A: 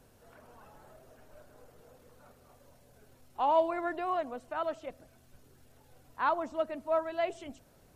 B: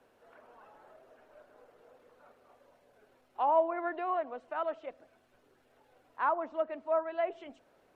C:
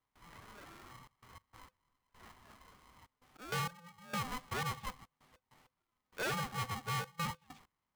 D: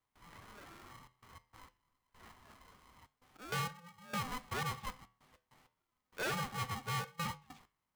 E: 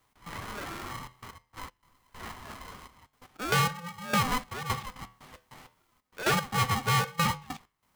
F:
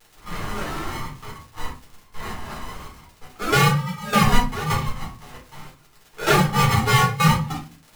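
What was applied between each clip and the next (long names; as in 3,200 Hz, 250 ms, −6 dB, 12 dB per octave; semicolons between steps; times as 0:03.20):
treble cut that deepens with the level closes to 1,700 Hz, closed at −25.5 dBFS; three-way crossover with the lows and the highs turned down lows −18 dB, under 280 Hz, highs −14 dB, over 3,400 Hz
gate pattern ".xxxxxx.x.x.." 98 BPM −24 dB; tube saturation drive 38 dB, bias 0.4; ring modulator with a square carrier 510 Hz; level +4 dB
flanger 0.28 Hz, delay 9.6 ms, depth 3.7 ms, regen −81%; level +4 dB
in parallel at +2 dB: downward compressor, threshold −45 dBFS, peak gain reduction 10 dB; on the sum: gate pattern "x.xxxxxxxx.." 115 BPM −12 dB; level +9 dB
pitch vibrato 1.1 Hz 59 cents; surface crackle 110 per second −40 dBFS; rectangular room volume 160 cubic metres, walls furnished, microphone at 4 metres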